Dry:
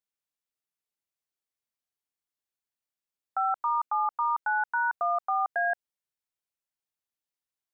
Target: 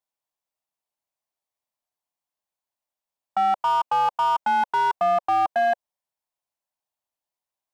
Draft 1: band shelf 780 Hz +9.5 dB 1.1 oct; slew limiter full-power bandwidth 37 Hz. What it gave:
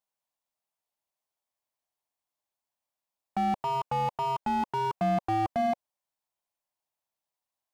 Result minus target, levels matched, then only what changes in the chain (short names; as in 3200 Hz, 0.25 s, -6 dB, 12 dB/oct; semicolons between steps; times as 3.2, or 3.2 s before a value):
slew limiter: distortion +18 dB
change: slew limiter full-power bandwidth 122.5 Hz